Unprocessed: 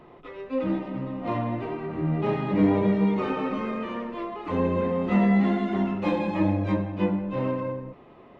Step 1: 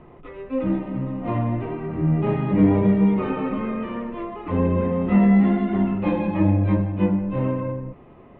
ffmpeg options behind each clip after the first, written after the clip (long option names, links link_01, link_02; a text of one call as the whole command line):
ffmpeg -i in.wav -af "lowpass=frequency=3100:width=0.5412,lowpass=frequency=3100:width=1.3066,lowshelf=frequency=180:gain=11.5" out.wav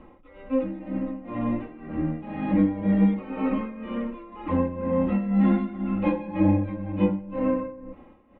ffmpeg -i in.wav -af "aecho=1:1:3.7:0.91,tremolo=f=2:d=0.78,volume=-3dB" out.wav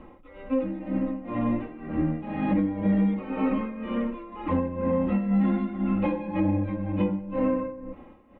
ffmpeg -i in.wav -af "alimiter=limit=-18dB:level=0:latency=1:release=193,volume=2dB" out.wav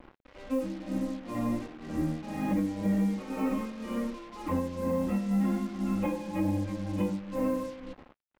ffmpeg -i in.wav -af "acrusher=bits=6:mix=0:aa=0.5,volume=-4.5dB" out.wav